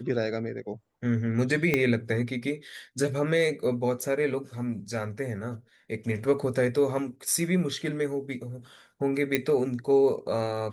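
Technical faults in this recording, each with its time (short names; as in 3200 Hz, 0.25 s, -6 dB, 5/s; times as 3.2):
1.74 pop -10 dBFS
9.35 pop -10 dBFS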